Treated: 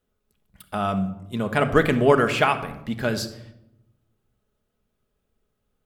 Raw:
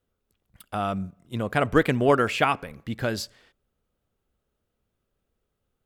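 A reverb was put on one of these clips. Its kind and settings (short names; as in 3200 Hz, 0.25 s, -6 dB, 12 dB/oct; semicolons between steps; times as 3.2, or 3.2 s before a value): shoebox room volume 2600 m³, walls furnished, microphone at 1.4 m; gain +1.5 dB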